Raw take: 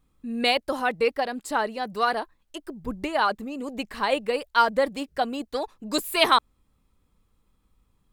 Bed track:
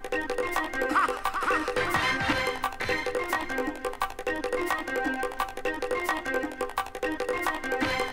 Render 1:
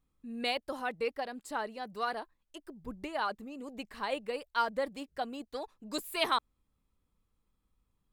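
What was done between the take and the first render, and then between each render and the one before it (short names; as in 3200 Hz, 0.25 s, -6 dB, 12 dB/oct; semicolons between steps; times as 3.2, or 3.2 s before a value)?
gain -10.5 dB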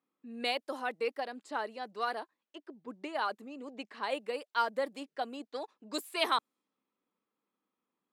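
low-pass opened by the level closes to 2700 Hz, open at -32 dBFS; HPF 240 Hz 24 dB/oct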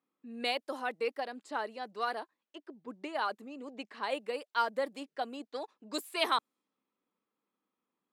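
nothing audible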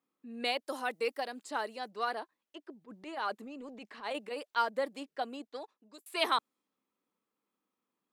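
0.67–1.89 high shelf 5300 Hz +11 dB; 2.81–4.56 transient shaper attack -11 dB, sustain +3 dB; 5.34–6.06 fade out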